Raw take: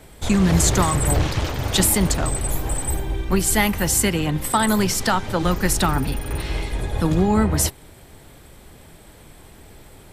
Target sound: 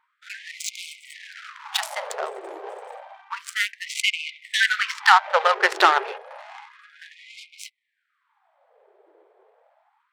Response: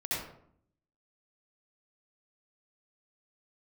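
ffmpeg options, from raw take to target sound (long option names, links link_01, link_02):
-filter_complex "[0:a]adynamicsmooth=sensitivity=1.5:basefreq=610,asettb=1/sr,asplit=3[link_01][link_02][link_03];[link_01]atrim=end=3.864[link_04];[link_02]atrim=start=3.86:end=6.18,asetpts=PTS-STARTPTS,afade=type=in:duration=0.004:curve=qsin,afade=type=out:start_time=2.316:duration=0.004:curve=qsin,equalizer=frequency=2300:width=0.36:gain=11[link_05];[link_03]atrim=start=6.176[link_06];[link_04][link_05]acrossfade=duration=0.004:curve1=hsin:curve2=qsin[link_07];[link_07][link_06]acrossfade=duration=0.004:curve1=qsin:curve2=hsin,afftfilt=real='re*gte(b*sr/1024,340*pow(2100/340,0.5+0.5*sin(2*PI*0.3*pts/sr)))':imag='im*gte(b*sr/1024,340*pow(2100/340,0.5+0.5*sin(2*PI*0.3*pts/sr)))':win_size=1024:overlap=0.75"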